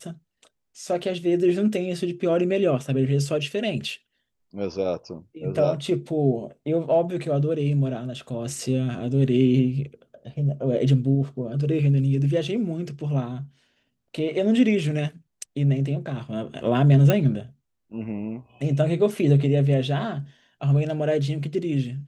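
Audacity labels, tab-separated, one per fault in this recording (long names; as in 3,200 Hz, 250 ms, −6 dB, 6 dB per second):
17.100000	17.100000	click −7 dBFS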